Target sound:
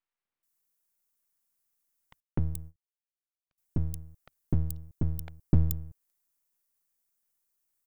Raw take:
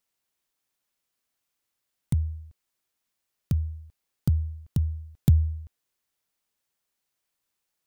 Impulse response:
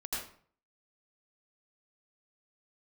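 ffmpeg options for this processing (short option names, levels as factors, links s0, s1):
-filter_complex "[0:a]acrossover=split=650|3100[s0][s1][s2];[s0]adelay=250[s3];[s2]adelay=430[s4];[s3][s1][s4]amix=inputs=3:normalize=0,asettb=1/sr,asplit=3[s5][s6][s7];[s5]atrim=end=2.204[s8];[s6]atrim=start=2.2:end=3.58,asetpts=PTS-STARTPTS,afade=t=in:d=0.004:c=qsin,afade=t=out:st=1.376:d=0.004:c=qsin,agate=range=0.0562:threshold=0.01:ratio=16:detection=peak[s9];[s7]atrim=start=3.576[s10];[s8][s9]acrossfade=d=0.004:c1=hsin:c2=qsin[s11];[s11][s10]acrossfade=d=0.004:c1=qsin:c2=hsin,acrossover=split=3600[s12][s13];[s12]aeval=exprs='max(val(0),0)':c=same[s14];[s13]aderivative[s15];[s14][s15]amix=inputs=2:normalize=0"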